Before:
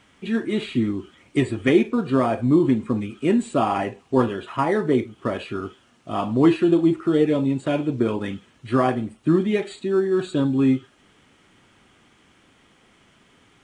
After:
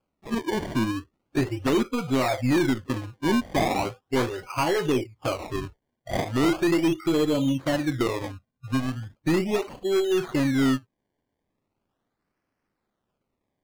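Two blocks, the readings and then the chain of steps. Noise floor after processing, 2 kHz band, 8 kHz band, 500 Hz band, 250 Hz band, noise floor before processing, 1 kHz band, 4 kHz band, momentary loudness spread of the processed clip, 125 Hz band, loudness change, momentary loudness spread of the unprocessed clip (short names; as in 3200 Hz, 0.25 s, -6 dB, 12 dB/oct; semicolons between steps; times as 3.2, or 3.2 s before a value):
-81 dBFS, +0.5 dB, n/a, -4.0 dB, -4.5 dB, -58 dBFS, -3.0 dB, +3.5 dB, 9 LU, -3.0 dB, -3.5 dB, 10 LU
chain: half-wave gain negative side -3 dB; spectral noise reduction 24 dB; spectral gain 8.27–9.03, 300–3200 Hz -20 dB; dynamic EQ 1800 Hz, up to +3 dB, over -41 dBFS, Q 1; in parallel at +0.5 dB: compressor 4:1, threshold -28 dBFS, peak gain reduction 14 dB; on the sum: decimation with a swept rate 23×, swing 100% 0.38 Hz; hard clip -14 dBFS, distortion -13 dB; high shelf 7300 Hz -10 dB; gain -3.5 dB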